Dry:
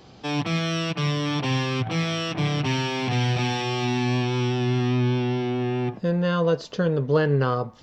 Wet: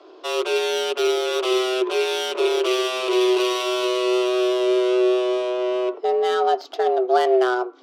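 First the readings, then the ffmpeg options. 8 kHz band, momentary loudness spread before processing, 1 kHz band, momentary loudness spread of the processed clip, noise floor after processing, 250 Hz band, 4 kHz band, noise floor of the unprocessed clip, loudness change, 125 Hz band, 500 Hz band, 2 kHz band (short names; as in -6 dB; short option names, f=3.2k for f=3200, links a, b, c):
n/a, 4 LU, +5.5 dB, 4 LU, -45 dBFS, -0.5 dB, +4.0 dB, -48 dBFS, +3.5 dB, under -40 dB, +8.0 dB, +1.5 dB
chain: -af "adynamicsmooth=sensitivity=4:basefreq=2.4k,equalizer=f=250:t=o:w=0.67:g=-10,equalizer=f=630:t=o:w=0.67:g=-8,equalizer=f=1.6k:t=o:w=0.67:g=-10,afreqshift=250,volume=6.5dB"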